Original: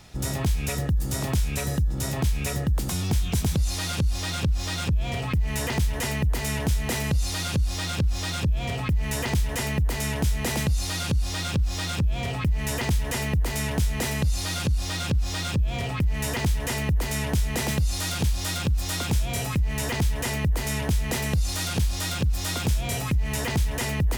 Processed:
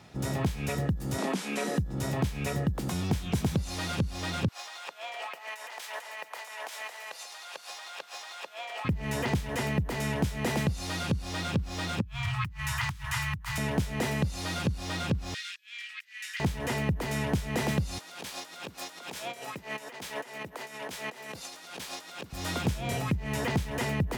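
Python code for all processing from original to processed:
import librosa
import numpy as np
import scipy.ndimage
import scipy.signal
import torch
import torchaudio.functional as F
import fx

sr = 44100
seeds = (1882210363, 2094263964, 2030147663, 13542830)

y = fx.chain(x, sr, fx.cvsd(bps=64000),
    fx.steep_highpass(hz=180.0, slope=72),
    fx.env_flatten(amount_pct=50), at=(1.18, 1.78))
y = fx.chain(y, sr, fx.highpass(hz=680.0, slope=24),
    fx.over_compress(threshold_db=-38.0, ratio=-1.0),
    fx.echo_single(ms=140, db=-12.0), at=(4.48, 8.85))
y = fx.chain(y, sr, fx.ellip_bandstop(low_hz=110.0, high_hz=1100.0, order=3, stop_db=60),
    fx.peak_eq(hz=290.0, db=10.5, octaves=2.5),
    fx.over_compress(threshold_db=-27.0, ratio=-1.0), at=(12.01, 13.58))
y = fx.chain(y, sr, fx.steep_highpass(hz=1700.0, slope=36),
    fx.high_shelf(hz=11000.0, db=-11.5), at=(15.34, 16.4))
y = fx.chain(y, sr, fx.highpass(hz=450.0, slope=12),
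    fx.over_compress(threshold_db=-36.0, ratio=-0.5), at=(17.98, 22.33))
y = scipy.signal.sosfilt(scipy.signal.butter(2, 120.0, 'highpass', fs=sr, output='sos'), y)
y = fx.high_shelf(y, sr, hz=3600.0, db=-11.0)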